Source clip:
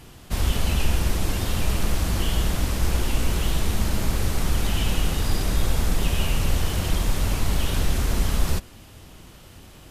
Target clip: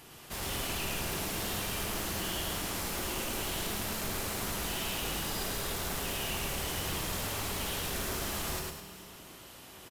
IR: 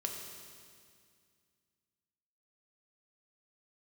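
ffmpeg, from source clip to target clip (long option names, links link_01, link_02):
-filter_complex "[0:a]lowpass=frequency=1700:poles=1,aemphasis=mode=production:type=riaa,asoftclip=type=tanh:threshold=-31.5dB,aecho=1:1:107.9|209.9:0.794|0.316,asplit=2[link_01][link_02];[1:a]atrim=start_sample=2205[link_03];[link_02][link_03]afir=irnorm=-1:irlink=0,volume=-2.5dB[link_04];[link_01][link_04]amix=inputs=2:normalize=0,volume=-6.5dB"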